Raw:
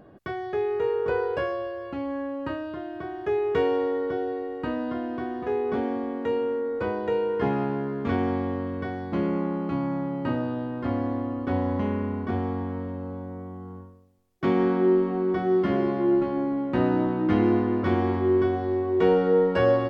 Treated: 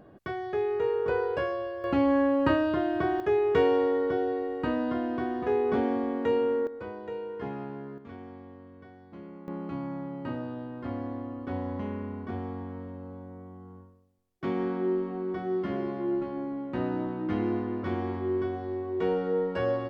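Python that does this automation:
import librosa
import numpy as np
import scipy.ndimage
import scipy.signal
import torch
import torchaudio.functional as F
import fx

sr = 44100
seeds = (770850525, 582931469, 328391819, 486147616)

y = fx.gain(x, sr, db=fx.steps((0.0, -2.0), (1.84, 7.5), (3.2, 0.5), (6.67, -11.0), (7.98, -19.0), (9.48, -7.5)))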